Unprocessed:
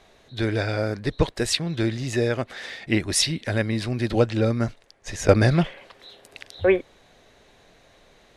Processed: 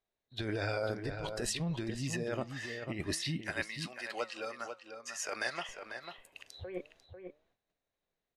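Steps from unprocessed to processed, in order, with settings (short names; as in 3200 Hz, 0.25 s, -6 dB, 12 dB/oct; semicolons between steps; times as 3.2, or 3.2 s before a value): gate -51 dBFS, range -20 dB; spectral noise reduction 10 dB; 3.44–5.69 HPF 1000 Hz 12 dB/oct; negative-ratio compressor -27 dBFS, ratio -1; flange 0.53 Hz, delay 2.1 ms, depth 6.3 ms, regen +90%; outdoor echo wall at 85 m, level -7 dB; gain -4 dB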